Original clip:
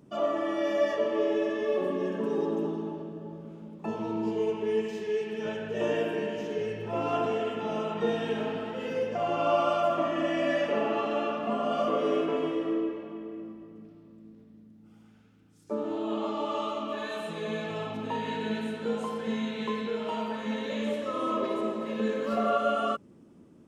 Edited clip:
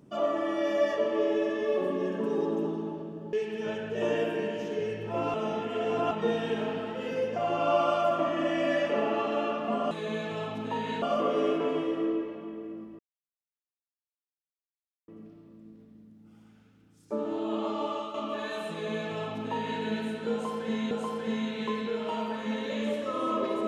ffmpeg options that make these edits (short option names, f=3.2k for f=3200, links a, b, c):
-filter_complex "[0:a]asplit=9[a][b][c][d][e][f][g][h][i];[a]atrim=end=3.332[j];[b]atrim=start=5.118:end=7.132[k];[c]atrim=start=7.128:end=7.902,asetpts=PTS-STARTPTS,areverse[l];[d]atrim=start=7.898:end=11.702[m];[e]atrim=start=17.298:end=18.412[n];[f]atrim=start=11.698:end=13.67,asetpts=PTS-STARTPTS,afade=t=out:st=1.968:d=0.004:c=hsin,apad=pad_dur=2.09[o];[g]atrim=start=13.67:end=16.73,asetpts=PTS-STARTPTS,afade=t=in:d=0.004:c=hsin,afade=t=out:st=2.77:d=0.29:silence=0.375837[p];[h]atrim=start=16.73:end=19.502,asetpts=PTS-STARTPTS,afade=t=in:d=0.004:c=hsin:silence=0.375837[q];[i]atrim=start=18.908[r];[j][k]acrossfade=d=0.004:c1=hsin:c2=hsin[s];[s][l]acrossfade=d=0.004:c1=hsin:c2=hsin[t];[t][m]acrossfade=d=0.004:c1=hsin:c2=hsin[u];[u][n]acrossfade=d=0.004:c1=hsin:c2=hsin[v];[o][p][q]concat=n=3:v=0:a=1[w];[v][w]acrossfade=d=0.004:c1=hsin:c2=hsin[x];[x][r]acrossfade=d=0.004:c1=hsin:c2=hsin"